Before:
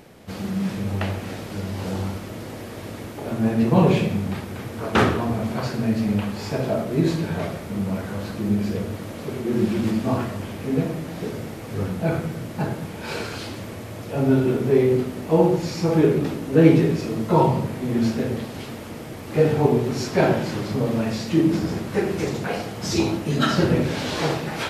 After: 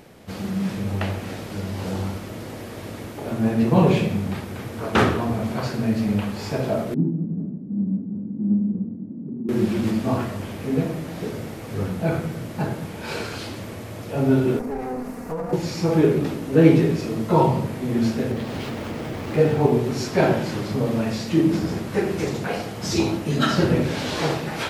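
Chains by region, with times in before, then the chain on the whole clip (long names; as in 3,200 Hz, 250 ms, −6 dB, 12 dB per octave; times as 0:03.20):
0:06.94–0:09.49: each half-wave held at its own peak + flat-topped band-pass 220 Hz, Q 1.9
0:14.59–0:15.53: lower of the sound and its delayed copy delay 4.2 ms + parametric band 3,300 Hz −12 dB 0.71 octaves + downward compressor, threshold −25 dBFS
0:18.31–0:19.72: running median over 5 samples + upward compression, threshold −21 dBFS
whole clip: no processing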